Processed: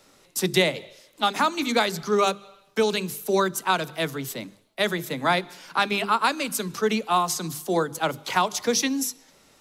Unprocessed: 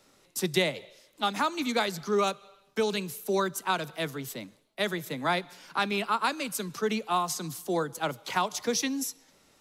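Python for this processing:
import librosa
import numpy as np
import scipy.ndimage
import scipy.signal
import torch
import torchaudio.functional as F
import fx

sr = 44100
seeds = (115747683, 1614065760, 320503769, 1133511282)

y = fx.hum_notches(x, sr, base_hz=50, count=8)
y = y * librosa.db_to_amplitude(5.5)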